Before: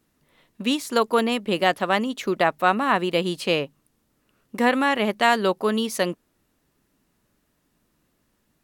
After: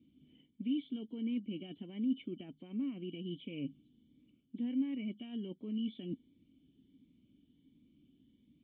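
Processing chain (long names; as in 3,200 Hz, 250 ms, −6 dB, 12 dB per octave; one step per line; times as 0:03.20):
hearing-aid frequency compression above 2,900 Hz 4 to 1
high-pass filter 60 Hz
low-shelf EQ 250 Hz +6 dB
brickwall limiter −14 dBFS, peak gain reduction 10 dB
reversed playback
downward compressor 4 to 1, threshold −39 dBFS, peak gain reduction 17 dB
reversed playback
formant resonators in series i
phaser whose notches keep moving one way rising 1.4 Hz
level +7.5 dB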